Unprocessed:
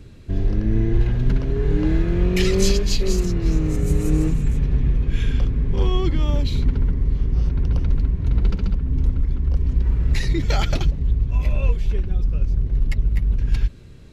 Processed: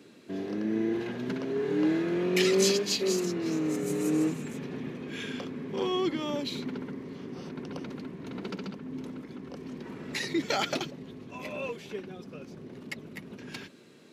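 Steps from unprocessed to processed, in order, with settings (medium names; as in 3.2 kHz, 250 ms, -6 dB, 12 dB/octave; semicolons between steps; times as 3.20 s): high-pass 220 Hz 24 dB/octave; trim -2 dB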